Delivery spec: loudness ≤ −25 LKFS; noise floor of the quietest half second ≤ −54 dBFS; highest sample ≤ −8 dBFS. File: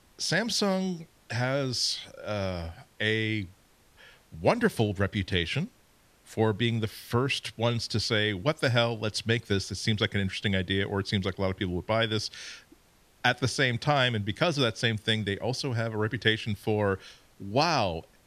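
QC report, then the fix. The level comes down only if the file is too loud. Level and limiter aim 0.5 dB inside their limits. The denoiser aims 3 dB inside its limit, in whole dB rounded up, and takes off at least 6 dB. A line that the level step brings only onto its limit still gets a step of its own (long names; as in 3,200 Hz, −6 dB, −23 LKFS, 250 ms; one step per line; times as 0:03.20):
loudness −28.0 LKFS: in spec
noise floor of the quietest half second −62 dBFS: in spec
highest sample −8.5 dBFS: in spec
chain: no processing needed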